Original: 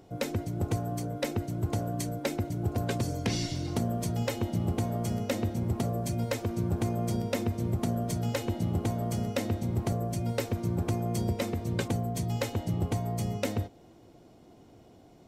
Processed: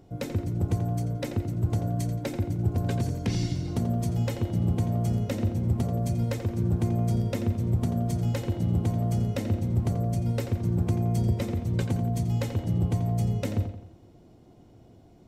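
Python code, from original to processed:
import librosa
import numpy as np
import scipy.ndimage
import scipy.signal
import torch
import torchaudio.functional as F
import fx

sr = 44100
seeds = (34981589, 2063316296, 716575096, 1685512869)

p1 = fx.low_shelf(x, sr, hz=230.0, db=10.0)
p2 = p1 + fx.echo_filtered(p1, sr, ms=86, feedback_pct=47, hz=5000.0, wet_db=-9, dry=0)
y = p2 * 10.0 ** (-4.0 / 20.0)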